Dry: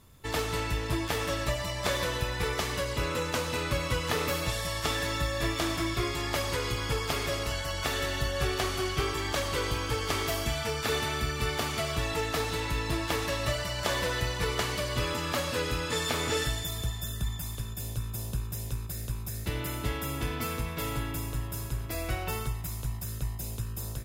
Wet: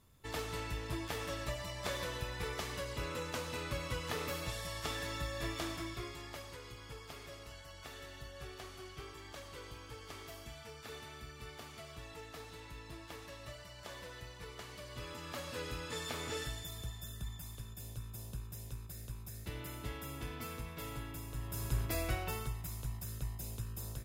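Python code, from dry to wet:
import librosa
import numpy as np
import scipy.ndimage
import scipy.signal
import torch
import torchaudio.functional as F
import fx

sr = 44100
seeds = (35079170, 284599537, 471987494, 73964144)

y = fx.gain(x, sr, db=fx.line((5.61, -9.5), (6.58, -19.0), (14.58, -19.0), (15.65, -11.0), (21.27, -11.0), (21.79, 0.0), (22.37, -7.0)))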